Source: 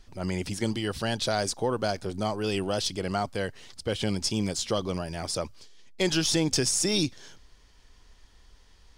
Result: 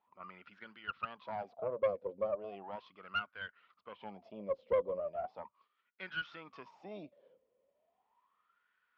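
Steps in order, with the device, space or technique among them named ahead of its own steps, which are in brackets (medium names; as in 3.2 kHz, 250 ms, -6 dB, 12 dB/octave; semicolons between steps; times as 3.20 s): wah-wah guitar rig (wah-wah 0.37 Hz 510–1500 Hz, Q 18; valve stage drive 35 dB, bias 0.65; cabinet simulation 90–3500 Hz, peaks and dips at 110 Hz -5 dB, 200 Hz +6 dB, 340 Hz -4 dB, 820 Hz -6 dB, 1.6 kHz -8 dB, 2.5 kHz +3 dB); trim +12 dB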